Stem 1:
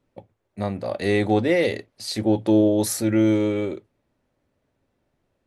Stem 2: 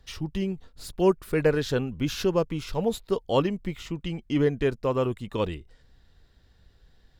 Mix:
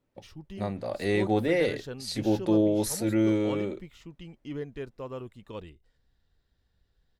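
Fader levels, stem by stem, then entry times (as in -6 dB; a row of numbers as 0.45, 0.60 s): -5.5, -13.0 dB; 0.00, 0.15 s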